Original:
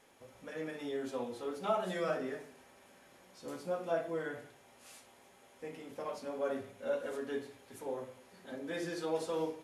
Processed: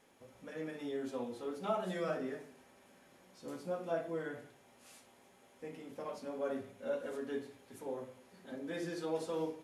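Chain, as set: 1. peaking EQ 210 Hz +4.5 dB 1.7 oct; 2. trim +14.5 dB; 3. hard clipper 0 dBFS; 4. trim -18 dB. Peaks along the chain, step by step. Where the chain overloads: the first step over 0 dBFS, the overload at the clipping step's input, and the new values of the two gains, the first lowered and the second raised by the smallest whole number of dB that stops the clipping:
-18.5 dBFS, -4.0 dBFS, -4.0 dBFS, -22.0 dBFS; nothing clips

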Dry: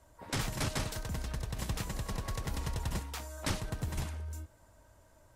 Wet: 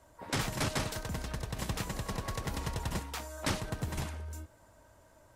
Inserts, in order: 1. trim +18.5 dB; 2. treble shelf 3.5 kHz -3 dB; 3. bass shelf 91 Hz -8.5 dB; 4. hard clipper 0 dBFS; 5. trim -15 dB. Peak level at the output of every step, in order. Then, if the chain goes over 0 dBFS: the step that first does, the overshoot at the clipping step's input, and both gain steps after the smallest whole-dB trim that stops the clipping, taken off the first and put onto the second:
-2.0 dBFS, -2.5 dBFS, -3.5 dBFS, -3.5 dBFS, -18.5 dBFS; nothing clips

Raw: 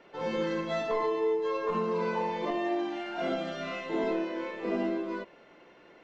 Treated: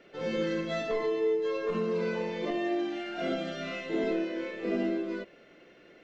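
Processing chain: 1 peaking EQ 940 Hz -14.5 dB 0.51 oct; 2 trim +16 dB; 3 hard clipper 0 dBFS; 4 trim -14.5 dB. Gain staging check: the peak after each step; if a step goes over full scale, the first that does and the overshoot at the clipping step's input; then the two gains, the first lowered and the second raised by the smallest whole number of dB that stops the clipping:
-20.5 dBFS, -4.5 dBFS, -4.5 dBFS, -19.0 dBFS; nothing clips

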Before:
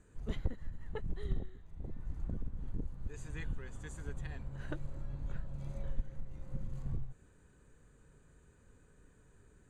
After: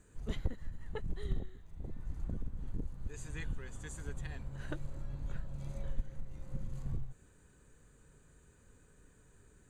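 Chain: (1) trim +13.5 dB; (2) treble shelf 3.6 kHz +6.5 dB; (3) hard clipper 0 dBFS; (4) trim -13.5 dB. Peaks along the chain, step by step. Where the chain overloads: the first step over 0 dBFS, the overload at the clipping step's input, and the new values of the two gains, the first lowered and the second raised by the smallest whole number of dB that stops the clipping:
-6.0 dBFS, -6.0 dBFS, -6.0 dBFS, -19.5 dBFS; nothing clips

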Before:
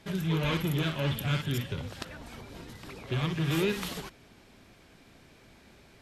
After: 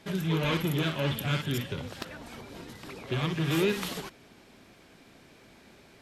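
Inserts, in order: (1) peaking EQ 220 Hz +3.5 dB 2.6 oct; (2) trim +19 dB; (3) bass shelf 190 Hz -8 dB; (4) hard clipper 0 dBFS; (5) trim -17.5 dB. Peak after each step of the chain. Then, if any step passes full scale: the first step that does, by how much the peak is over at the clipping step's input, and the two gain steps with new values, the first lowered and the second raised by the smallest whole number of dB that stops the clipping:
-13.5 dBFS, +5.5 dBFS, +4.5 dBFS, 0.0 dBFS, -17.5 dBFS; step 2, 4.5 dB; step 2 +14 dB, step 5 -12.5 dB

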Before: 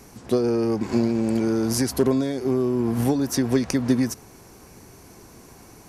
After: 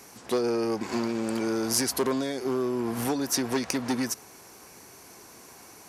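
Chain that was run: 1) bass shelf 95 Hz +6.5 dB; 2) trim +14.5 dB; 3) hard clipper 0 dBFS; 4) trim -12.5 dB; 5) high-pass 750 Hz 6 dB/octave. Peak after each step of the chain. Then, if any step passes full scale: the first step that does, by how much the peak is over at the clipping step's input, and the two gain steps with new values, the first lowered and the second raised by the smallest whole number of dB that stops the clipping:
-7.5 dBFS, +7.0 dBFS, 0.0 dBFS, -12.5 dBFS, -10.0 dBFS; step 2, 7.0 dB; step 2 +7.5 dB, step 4 -5.5 dB

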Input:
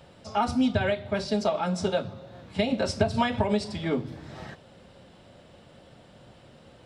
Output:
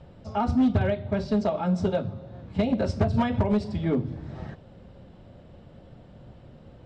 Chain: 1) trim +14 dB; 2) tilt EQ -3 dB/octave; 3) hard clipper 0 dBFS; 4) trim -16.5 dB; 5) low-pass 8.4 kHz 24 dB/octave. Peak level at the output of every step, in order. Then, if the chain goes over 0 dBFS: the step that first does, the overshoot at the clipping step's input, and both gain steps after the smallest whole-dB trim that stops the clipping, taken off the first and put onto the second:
+3.5 dBFS, +9.0 dBFS, 0.0 dBFS, -16.5 dBFS, -16.5 dBFS; step 1, 9.0 dB; step 1 +5 dB, step 4 -7.5 dB

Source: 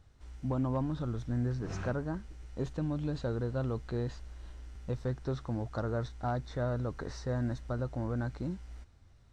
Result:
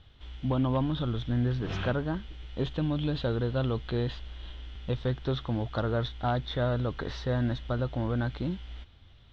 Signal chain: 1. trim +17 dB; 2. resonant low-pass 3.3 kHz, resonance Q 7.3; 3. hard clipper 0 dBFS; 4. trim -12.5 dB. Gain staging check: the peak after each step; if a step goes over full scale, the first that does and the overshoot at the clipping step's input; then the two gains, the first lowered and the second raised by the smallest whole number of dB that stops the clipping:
-5.5 dBFS, -5.0 dBFS, -5.0 dBFS, -17.5 dBFS; nothing clips

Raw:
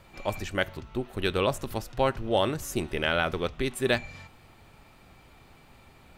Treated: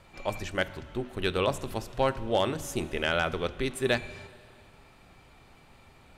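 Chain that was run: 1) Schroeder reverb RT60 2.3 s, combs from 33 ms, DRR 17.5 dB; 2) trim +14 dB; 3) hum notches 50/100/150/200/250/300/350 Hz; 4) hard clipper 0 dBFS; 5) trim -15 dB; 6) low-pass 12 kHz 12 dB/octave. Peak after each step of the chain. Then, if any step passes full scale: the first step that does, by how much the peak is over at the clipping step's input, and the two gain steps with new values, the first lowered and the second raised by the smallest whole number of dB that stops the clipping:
-10.5 dBFS, +3.5 dBFS, +4.0 dBFS, 0.0 dBFS, -15.0 dBFS, -14.5 dBFS; step 2, 4.0 dB; step 2 +10 dB, step 5 -11 dB

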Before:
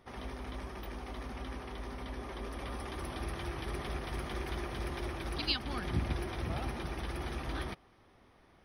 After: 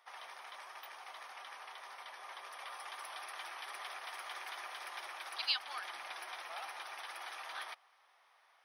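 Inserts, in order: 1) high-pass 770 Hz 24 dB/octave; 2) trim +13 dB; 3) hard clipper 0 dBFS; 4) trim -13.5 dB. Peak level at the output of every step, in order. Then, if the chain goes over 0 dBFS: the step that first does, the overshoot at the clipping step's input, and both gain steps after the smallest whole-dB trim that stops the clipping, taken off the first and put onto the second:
-18.0 dBFS, -5.0 dBFS, -5.0 dBFS, -18.5 dBFS; nothing clips

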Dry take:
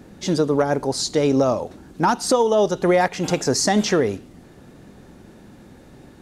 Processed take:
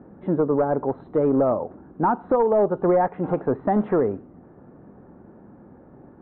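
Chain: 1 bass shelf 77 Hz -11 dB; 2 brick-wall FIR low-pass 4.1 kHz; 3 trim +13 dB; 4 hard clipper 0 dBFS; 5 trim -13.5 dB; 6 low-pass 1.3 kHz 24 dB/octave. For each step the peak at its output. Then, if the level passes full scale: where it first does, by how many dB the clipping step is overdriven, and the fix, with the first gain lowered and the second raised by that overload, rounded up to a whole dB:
-6.0 dBFS, -5.5 dBFS, +7.5 dBFS, 0.0 dBFS, -13.5 dBFS, -12.0 dBFS; step 3, 7.5 dB; step 3 +5 dB, step 5 -5.5 dB

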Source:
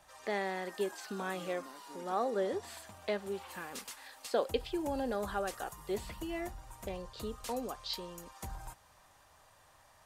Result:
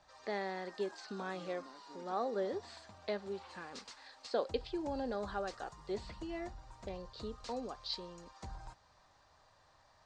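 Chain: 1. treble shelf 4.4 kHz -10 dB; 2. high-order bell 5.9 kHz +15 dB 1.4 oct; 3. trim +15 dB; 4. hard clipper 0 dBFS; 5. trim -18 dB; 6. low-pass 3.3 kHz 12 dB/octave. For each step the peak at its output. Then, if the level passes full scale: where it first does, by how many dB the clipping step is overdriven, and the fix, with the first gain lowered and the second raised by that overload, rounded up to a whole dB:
-18.5 dBFS, -17.5 dBFS, -2.5 dBFS, -2.5 dBFS, -20.5 dBFS, -21.5 dBFS; nothing clips

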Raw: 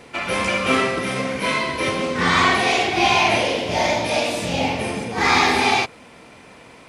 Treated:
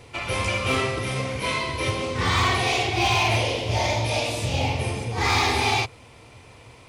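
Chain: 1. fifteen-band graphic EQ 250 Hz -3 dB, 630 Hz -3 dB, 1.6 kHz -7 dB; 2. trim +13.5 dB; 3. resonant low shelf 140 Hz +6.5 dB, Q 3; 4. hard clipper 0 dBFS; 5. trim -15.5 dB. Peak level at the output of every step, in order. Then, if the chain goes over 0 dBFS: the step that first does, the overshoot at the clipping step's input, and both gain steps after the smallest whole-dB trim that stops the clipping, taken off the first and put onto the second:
-5.5 dBFS, +8.0 dBFS, +8.5 dBFS, 0.0 dBFS, -15.5 dBFS; step 2, 8.5 dB; step 2 +4.5 dB, step 5 -6.5 dB

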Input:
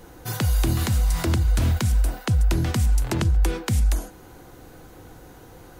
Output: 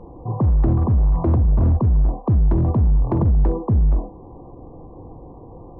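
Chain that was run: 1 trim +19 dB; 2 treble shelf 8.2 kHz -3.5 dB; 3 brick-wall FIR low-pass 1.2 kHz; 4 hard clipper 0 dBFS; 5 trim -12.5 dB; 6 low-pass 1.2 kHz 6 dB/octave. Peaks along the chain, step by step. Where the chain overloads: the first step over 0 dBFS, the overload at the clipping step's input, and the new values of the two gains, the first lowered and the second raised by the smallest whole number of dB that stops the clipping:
+6.0 dBFS, +6.0 dBFS, +6.0 dBFS, 0.0 dBFS, -12.5 dBFS, -12.5 dBFS; step 1, 6.0 dB; step 1 +13 dB, step 5 -6.5 dB

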